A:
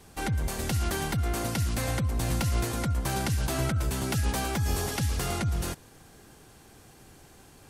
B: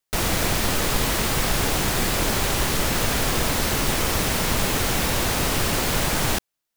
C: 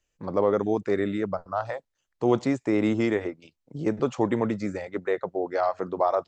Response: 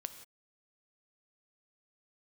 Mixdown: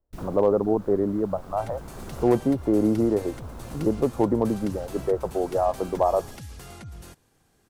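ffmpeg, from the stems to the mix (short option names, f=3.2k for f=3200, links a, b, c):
-filter_complex "[0:a]adelay=1400,volume=-12.5dB[a];[1:a]afwtdn=0.0708,volume=-12.5dB,asplit=2[b][c];[c]volume=-14.5dB[d];[2:a]lowpass=f=1k:w=0.5412,lowpass=f=1k:w=1.3066,asoftclip=type=hard:threshold=-13.5dB,volume=2.5dB,asplit=2[e][f];[f]apad=whole_len=298366[g];[b][g]sidechaincompress=threshold=-34dB:ratio=3:attack=23:release=724[h];[3:a]atrim=start_sample=2205[i];[d][i]afir=irnorm=-1:irlink=0[j];[a][h][e][j]amix=inputs=4:normalize=0"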